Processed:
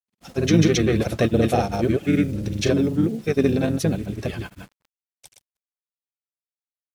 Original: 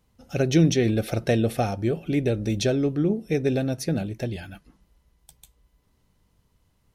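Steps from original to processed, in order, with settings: bass shelf 69 Hz -9.5 dB; in parallel at -2.5 dB: peak limiter -16 dBFS, peak gain reduction 6.5 dB; on the sum: word length cut 8-bit, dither none; harmony voices -7 st -7 dB, -3 st -17 dB; granulator 100 ms, grains 20 per s, pitch spread up and down by 0 st

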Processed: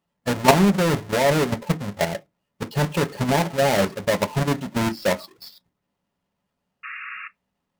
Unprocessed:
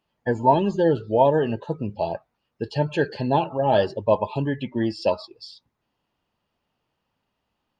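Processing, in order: square wave that keeps the level; level held to a coarse grid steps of 10 dB; painted sound noise, 6.83–7.28 s, 1.1–2.8 kHz -36 dBFS; on a send at -5.5 dB: reverberation RT60 0.15 s, pre-delay 3 ms; on the sum: loudspeaker Doppler distortion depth 0.43 ms

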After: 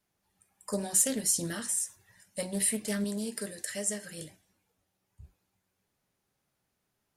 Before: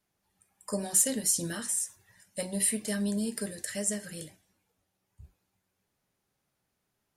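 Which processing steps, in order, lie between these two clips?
3.04–4.18 s: bass shelf 190 Hz -9 dB; loudspeaker Doppler distortion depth 0.17 ms

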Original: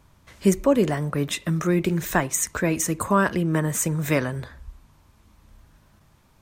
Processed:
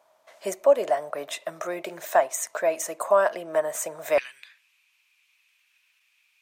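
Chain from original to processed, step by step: resonant high-pass 640 Hz, resonance Q 7.3, from 4.18 s 2.5 kHz; trim -6 dB

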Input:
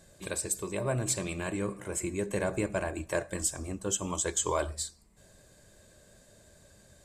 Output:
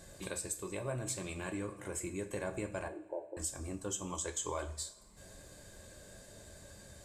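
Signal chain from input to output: compression 2:1, threshold -50 dBFS, peak gain reduction 13.5 dB; 2.88–3.37 s: brick-wall FIR band-pass 300–1000 Hz; two-slope reverb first 0.3 s, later 1.7 s, from -18 dB, DRR 6 dB; trim +3.5 dB

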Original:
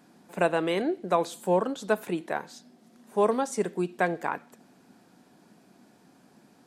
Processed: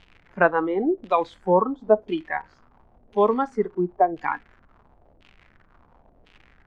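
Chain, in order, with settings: spectral noise reduction 17 dB; added noise brown -61 dBFS; crackle 140 per s -41 dBFS; LFO low-pass saw down 0.96 Hz 540–3100 Hz; trim +4 dB

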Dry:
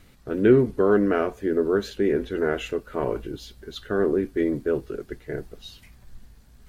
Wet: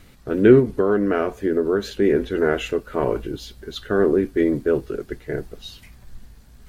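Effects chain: 0.59–2.02 s: compression 3:1, threshold -21 dBFS, peak gain reduction 5.5 dB; trim +4.5 dB

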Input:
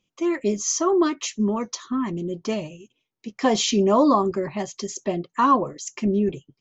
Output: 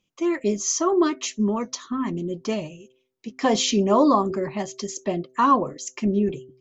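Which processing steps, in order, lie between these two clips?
de-hum 128.5 Hz, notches 5

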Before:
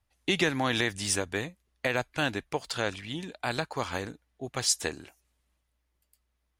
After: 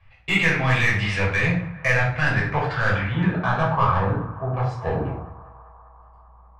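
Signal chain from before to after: resonant low shelf 180 Hz +12.5 dB, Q 1.5; reverse; compression 16:1, threshold -34 dBFS, peak gain reduction 16 dB; reverse; low-pass sweep 2.3 kHz -> 680 Hz, 1.59–5.46 s; overdrive pedal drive 14 dB, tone 5.5 kHz, clips at -23 dBFS; on a send: band-passed feedback delay 197 ms, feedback 83%, band-pass 1 kHz, level -18 dB; on the sum: simulated room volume 580 m³, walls furnished, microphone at 5.7 m; trim +5.5 dB

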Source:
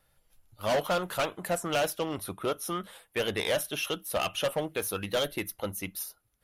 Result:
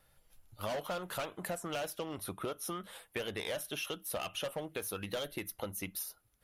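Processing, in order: compression, threshold -37 dBFS, peak gain reduction 12 dB; trim +1 dB

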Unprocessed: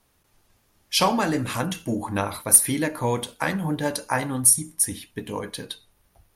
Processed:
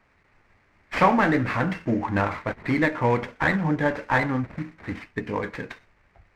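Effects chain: CVSD coder 32 kbps; resonant high shelf 2.8 kHz -10 dB, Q 3; sliding maximum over 3 samples; trim +2.5 dB

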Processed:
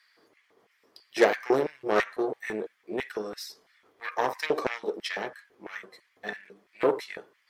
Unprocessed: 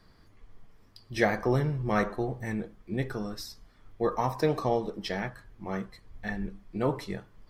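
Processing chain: Chebyshev shaper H 8 -18 dB, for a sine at -8.5 dBFS; LFO high-pass square 3 Hz 410–2000 Hz

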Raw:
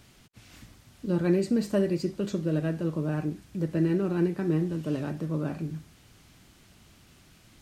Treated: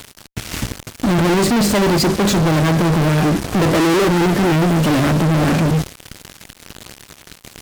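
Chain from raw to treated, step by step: 3.42–4.08 s: peaking EQ 550 Hz +13.5 dB 2.1 oct; fuzz box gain 46 dB, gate -51 dBFS

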